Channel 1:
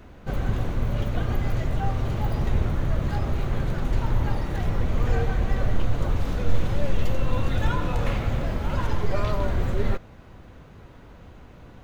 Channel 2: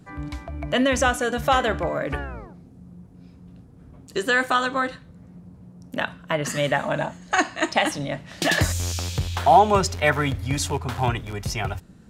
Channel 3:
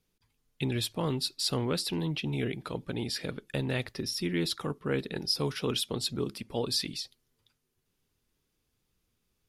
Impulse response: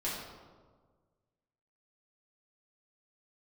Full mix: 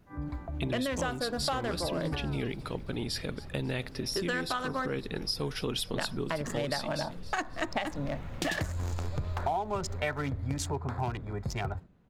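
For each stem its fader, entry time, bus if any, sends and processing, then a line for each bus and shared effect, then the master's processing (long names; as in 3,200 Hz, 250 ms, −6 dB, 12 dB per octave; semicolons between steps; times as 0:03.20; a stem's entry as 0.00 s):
−17.0 dB, 0.00 s, no send, echo send −7 dB, automatic ducking −16 dB, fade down 0.65 s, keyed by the third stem
−4.0 dB, 0.00 s, no send, no echo send, adaptive Wiener filter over 15 samples; noise gate −40 dBFS, range −12 dB
0.0 dB, 0.00 s, no send, echo send −19.5 dB, no processing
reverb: not used
echo: repeating echo 271 ms, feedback 51%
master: downward compressor 8 to 1, threshold −28 dBFS, peak gain reduction 14.5 dB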